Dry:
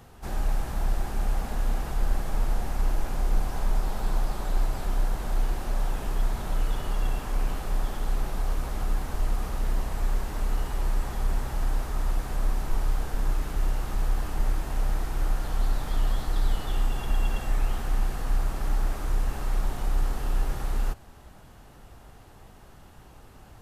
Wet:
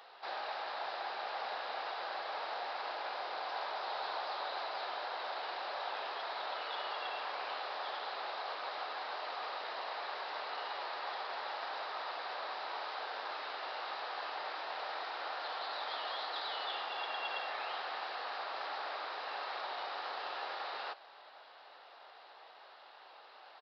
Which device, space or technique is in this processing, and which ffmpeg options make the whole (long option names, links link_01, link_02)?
musical greeting card: -af "aresample=11025,aresample=44100,highpass=frequency=570:width=0.5412,highpass=frequency=570:width=1.3066,equalizer=frequency=3900:width_type=o:width=0.24:gain=6.5,volume=1dB"